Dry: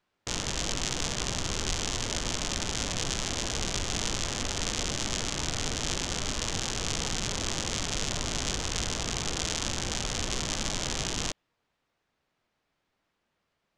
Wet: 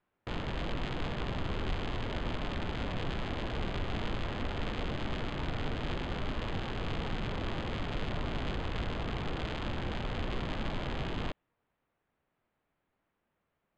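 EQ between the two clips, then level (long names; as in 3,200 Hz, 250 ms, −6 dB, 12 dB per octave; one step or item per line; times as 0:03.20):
high-frequency loss of the air 450 metres
notch filter 5,600 Hz, Q 6.6
0.0 dB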